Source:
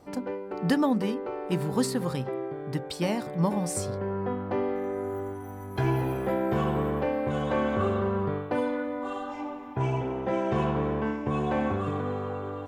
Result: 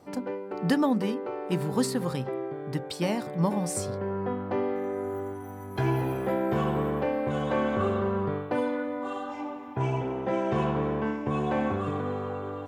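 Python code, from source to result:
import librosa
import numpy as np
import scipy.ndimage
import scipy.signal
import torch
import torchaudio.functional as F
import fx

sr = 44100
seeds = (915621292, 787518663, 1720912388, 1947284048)

y = scipy.signal.sosfilt(scipy.signal.butter(2, 83.0, 'highpass', fs=sr, output='sos'), x)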